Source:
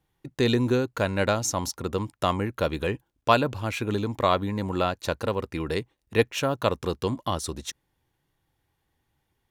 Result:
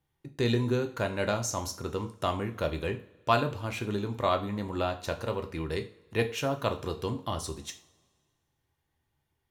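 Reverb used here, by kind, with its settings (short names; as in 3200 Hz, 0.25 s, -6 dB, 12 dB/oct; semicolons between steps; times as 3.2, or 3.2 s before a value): two-slope reverb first 0.37 s, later 1.8 s, from -22 dB, DRR 5 dB; gain -6 dB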